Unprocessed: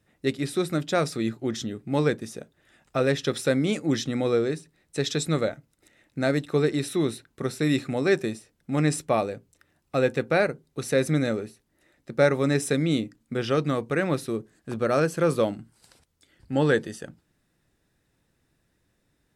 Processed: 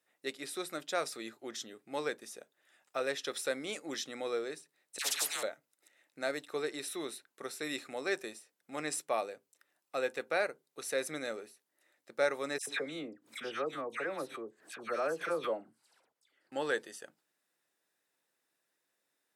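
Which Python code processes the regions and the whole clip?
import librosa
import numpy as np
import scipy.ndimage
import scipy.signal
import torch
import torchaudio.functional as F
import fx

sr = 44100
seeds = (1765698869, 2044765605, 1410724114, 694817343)

y = fx.chain(x, sr, fx.dispersion(late='lows', ms=75.0, hz=1300.0),
    fx.spectral_comp(ratio=4.0), at=(4.98, 5.43))
y = fx.chain(y, sr, fx.high_shelf(hz=3500.0, db=-11.0),
    fx.dispersion(late='lows', ms=96.0, hz=1800.0),
    fx.pre_swell(db_per_s=120.0), at=(12.58, 16.52))
y = scipy.signal.sosfilt(scipy.signal.butter(2, 530.0, 'highpass', fs=sr, output='sos'), y)
y = fx.high_shelf(y, sr, hz=9800.0, db=7.5)
y = F.gain(torch.from_numpy(y), -7.5).numpy()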